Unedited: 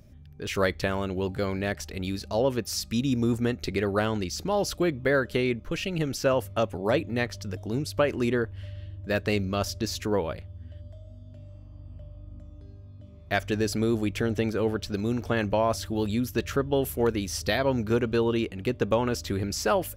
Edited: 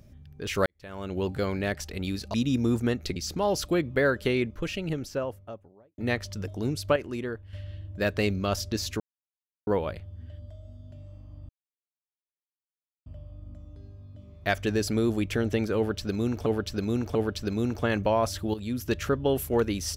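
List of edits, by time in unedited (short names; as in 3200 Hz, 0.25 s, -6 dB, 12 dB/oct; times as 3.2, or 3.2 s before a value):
0.66–1.18 fade in quadratic
2.34–2.92 cut
3.74–4.25 cut
5.47–7.07 studio fade out
8.05–8.62 gain -7.5 dB
10.09 insert silence 0.67 s
11.91 insert silence 1.57 s
14.62–15.31 loop, 3 plays
16.01–16.36 fade in, from -12 dB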